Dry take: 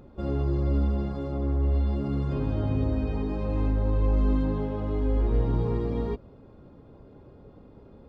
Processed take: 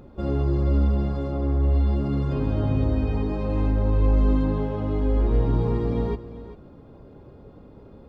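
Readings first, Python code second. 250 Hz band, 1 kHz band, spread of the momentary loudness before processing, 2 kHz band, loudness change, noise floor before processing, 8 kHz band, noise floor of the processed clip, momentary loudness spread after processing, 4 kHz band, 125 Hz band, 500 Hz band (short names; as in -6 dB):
+3.5 dB, +4.0 dB, 5 LU, +3.5 dB, +3.5 dB, -52 dBFS, n/a, -48 dBFS, 6 LU, +3.5 dB, +4.0 dB, +3.5 dB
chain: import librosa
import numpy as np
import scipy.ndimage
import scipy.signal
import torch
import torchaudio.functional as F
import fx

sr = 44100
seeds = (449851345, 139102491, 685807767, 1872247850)

y = x + 10.0 ** (-14.5 / 20.0) * np.pad(x, (int(393 * sr / 1000.0), 0))[:len(x)]
y = y * librosa.db_to_amplitude(3.5)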